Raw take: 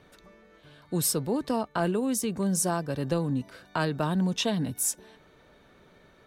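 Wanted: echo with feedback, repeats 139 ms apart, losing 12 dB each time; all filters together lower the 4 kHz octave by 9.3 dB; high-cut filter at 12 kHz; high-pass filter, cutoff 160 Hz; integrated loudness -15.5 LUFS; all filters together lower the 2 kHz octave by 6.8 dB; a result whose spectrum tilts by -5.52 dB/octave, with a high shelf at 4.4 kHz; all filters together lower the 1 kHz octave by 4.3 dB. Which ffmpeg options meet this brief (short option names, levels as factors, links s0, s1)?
-af "highpass=160,lowpass=12000,equalizer=f=1000:t=o:g=-4,equalizer=f=2000:t=o:g=-5.5,equalizer=f=4000:t=o:g=-8,highshelf=f=4400:g=-4.5,aecho=1:1:139|278|417:0.251|0.0628|0.0157,volume=5.96"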